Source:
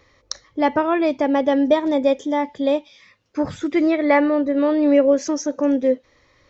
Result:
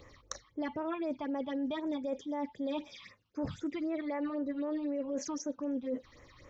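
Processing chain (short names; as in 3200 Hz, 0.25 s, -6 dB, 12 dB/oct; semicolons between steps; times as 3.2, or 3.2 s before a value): phaser stages 6, 3.9 Hz, lowest notch 460–4500 Hz; limiter -15 dBFS, peak gain reduction 9 dB; reverse; compressor 4:1, threshold -38 dBFS, peak gain reduction 16.5 dB; reverse; gain +2 dB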